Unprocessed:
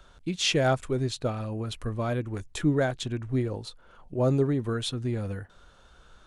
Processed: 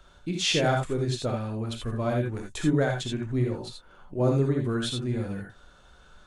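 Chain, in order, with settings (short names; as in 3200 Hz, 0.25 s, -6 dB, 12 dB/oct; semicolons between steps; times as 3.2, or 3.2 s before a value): non-linear reverb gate 0.1 s rising, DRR 1 dB; gain -1.5 dB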